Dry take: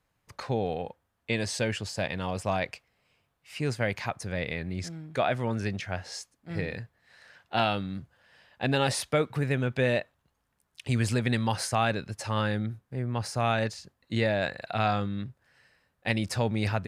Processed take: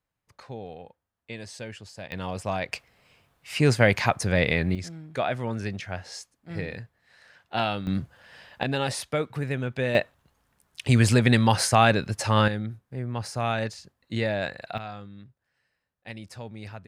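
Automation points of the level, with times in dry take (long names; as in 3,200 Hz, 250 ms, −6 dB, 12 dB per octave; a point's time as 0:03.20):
−9.5 dB
from 0:02.12 −0.5 dB
from 0:02.72 +9.5 dB
from 0:04.75 −0.5 dB
from 0:07.87 +9.5 dB
from 0:08.63 −1.5 dB
from 0:09.95 +7.5 dB
from 0:12.48 −0.5 dB
from 0:14.78 −12 dB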